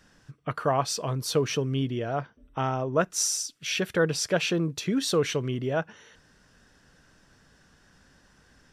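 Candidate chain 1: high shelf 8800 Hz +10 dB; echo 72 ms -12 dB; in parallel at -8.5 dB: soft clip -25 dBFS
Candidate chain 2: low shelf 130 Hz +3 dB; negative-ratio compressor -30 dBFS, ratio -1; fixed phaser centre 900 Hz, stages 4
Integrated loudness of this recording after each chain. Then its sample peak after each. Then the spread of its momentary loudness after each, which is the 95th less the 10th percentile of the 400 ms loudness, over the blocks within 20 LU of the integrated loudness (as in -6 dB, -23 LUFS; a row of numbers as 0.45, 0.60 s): -24.5, -32.5 LUFS; -10.0, -17.0 dBFS; 8, 8 LU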